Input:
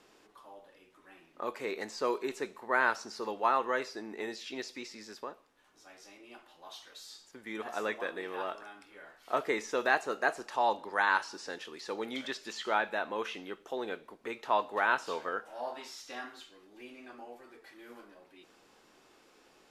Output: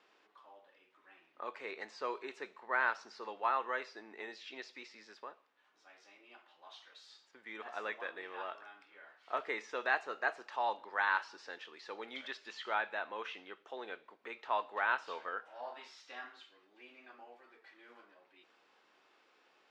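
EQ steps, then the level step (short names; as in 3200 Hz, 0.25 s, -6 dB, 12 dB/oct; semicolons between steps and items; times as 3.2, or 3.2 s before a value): HPF 960 Hz 6 dB/oct; LPF 3400 Hz 12 dB/oct; -2.0 dB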